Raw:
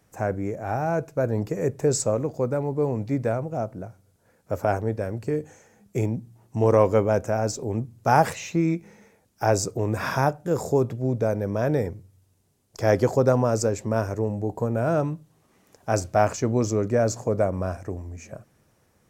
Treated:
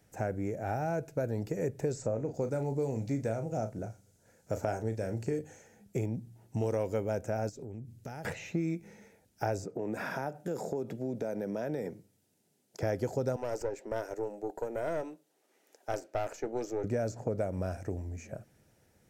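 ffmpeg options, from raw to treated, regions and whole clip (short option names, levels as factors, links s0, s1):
-filter_complex "[0:a]asettb=1/sr,asplit=3[s0][s1][s2];[s0]atrim=end=1.974[s3];[s1]atrim=start=1.97:end=5.39,asetpts=PTS-STARTPTS,afade=t=in:d=0.004:c=qsin,afade=t=out:st=3.416:d=0.004:c=qsin,equalizer=f=6700:t=o:w=0.72:g=8.5,asplit=2[s4][s5];[s5]adelay=36,volume=0.335[s6];[s4][s6]amix=inputs=2:normalize=0,atrim=end_sample=150822[s7];[s2]atrim=start=5.386[s8];[s3][s7]acrossfade=d=0.004:c1=hsin:c2=qsin[s9];[s9][s8]acrossfade=d=0.004:c1=qsin:c2=hsin,asettb=1/sr,asplit=3[s10][s11][s12];[s10]atrim=end=7.494[s13];[s11]atrim=start=7.49:end=8.25,asetpts=PTS-STARTPTS,afade=t=in:d=0.004:c=qsin,afade=t=out:st=0.756:d=0.004:c=qsin,equalizer=f=870:t=o:w=1.6:g=-7.5,acompressor=threshold=0.0158:ratio=6:attack=3.2:release=140:knee=1:detection=peak[s14];[s12]atrim=start=8.246[s15];[s13][s14]acrossfade=d=0.004:c1=hsin:c2=qsin[s16];[s16][s15]acrossfade=d=0.004:c1=qsin:c2=hsin,asettb=1/sr,asplit=3[s17][s18][s19];[s17]atrim=end=9.644[s20];[s18]atrim=start=9.64:end=12.83,asetpts=PTS-STARTPTS,afade=t=in:d=0.004:c=qsin,afade=t=out:st=3.186:d=0.004:c=qsin,highpass=f=160:w=0.5412,highpass=f=160:w=1.3066,acompressor=threshold=0.0398:ratio=3:attack=3.2:release=140:knee=1:detection=peak[s21];[s19]atrim=start=12.826[s22];[s20][s21]acrossfade=d=0.004:c1=hsin:c2=qsin[s23];[s23][s22]acrossfade=d=0.004:c1=qsin:c2=hsin,asettb=1/sr,asplit=3[s24][s25][s26];[s24]atrim=end=13.364[s27];[s25]atrim=start=13.36:end=16.84,asetpts=PTS-STARTPTS,afade=t=in:d=0.004:c=qsin,afade=t=out:st=3.476:d=0.004:c=qsin,highpass=f=320:w=0.5412,highpass=f=320:w=1.3066,aeval=exprs='(tanh(7.94*val(0)+0.65)-tanh(0.65))/7.94':c=same[s28];[s26]atrim=start=16.836[s29];[s27][s28]acrossfade=d=0.004:c1=hsin:c2=qsin[s30];[s30][s29]acrossfade=d=0.004:c1=qsin:c2=hsin,equalizer=f=1100:t=o:w=0.24:g=-14.5,acrossover=split=2400|7100[s31][s32][s33];[s31]acompressor=threshold=0.0447:ratio=4[s34];[s32]acompressor=threshold=0.002:ratio=4[s35];[s33]acompressor=threshold=0.00141:ratio=4[s36];[s34][s35][s36]amix=inputs=3:normalize=0,volume=0.75"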